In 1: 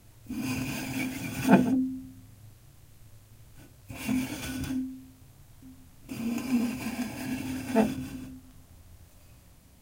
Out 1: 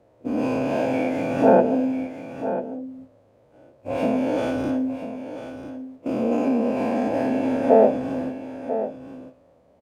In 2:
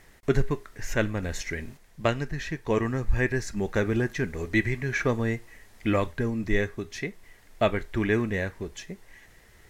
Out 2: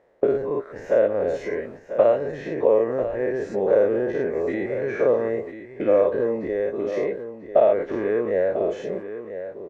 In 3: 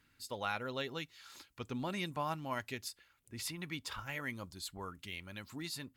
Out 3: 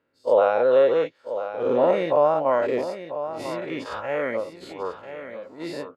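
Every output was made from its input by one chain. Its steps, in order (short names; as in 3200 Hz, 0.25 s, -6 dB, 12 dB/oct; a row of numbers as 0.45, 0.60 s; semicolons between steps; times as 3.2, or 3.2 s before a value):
spectral dilation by 0.12 s; gate -37 dBFS, range -13 dB; compressor 3:1, threshold -29 dBFS; band-pass 540 Hz, Q 4.1; echo 0.993 s -11 dB; match loudness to -23 LUFS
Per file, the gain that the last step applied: +24.0, +17.5, +24.5 dB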